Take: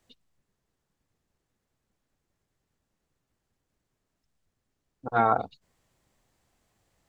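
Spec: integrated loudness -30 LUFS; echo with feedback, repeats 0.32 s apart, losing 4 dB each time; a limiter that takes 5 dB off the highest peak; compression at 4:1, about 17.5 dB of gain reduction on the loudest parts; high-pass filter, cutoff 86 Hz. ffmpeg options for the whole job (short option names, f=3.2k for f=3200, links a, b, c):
-af "highpass=86,acompressor=threshold=-39dB:ratio=4,alimiter=level_in=5.5dB:limit=-24dB:level=0:latency=1,volume=-5.5dB,aecho=1:1:320|640|960|1280|1600|1920|2240|2560|2880:0.631|0.398|0.25|0.158|0.0994|0.0626|0.0394|0.0249|0.0157,volume=18dB"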